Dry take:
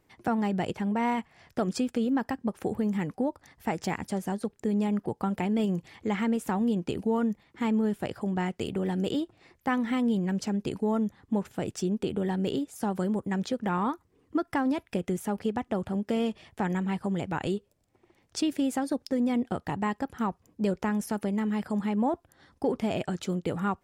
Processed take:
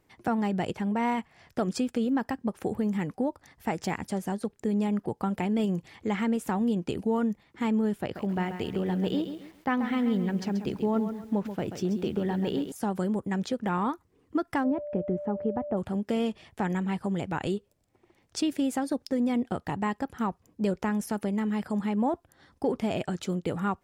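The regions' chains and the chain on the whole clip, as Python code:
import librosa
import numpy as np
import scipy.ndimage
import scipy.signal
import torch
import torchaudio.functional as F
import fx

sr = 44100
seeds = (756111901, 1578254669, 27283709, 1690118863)

y = fx.chain(x, sr, fx.peak_eq(hz=8400.0, db=-13.0, octaves=0.73),
    fx.echo_crushed(ms=134, feedback_pct=35, bits=9, wet_db=-9.0), at=(8.01, 12.72))
y = fx.lowpass(y, sr, hz=1000.0, slope=12, at=(14.63, 15.76), fade=0.02)
y = fx.dmg_tone(y, sr, hz=590.0, level_db=-34.0, at=(14.63, 15.76), fade=0.02)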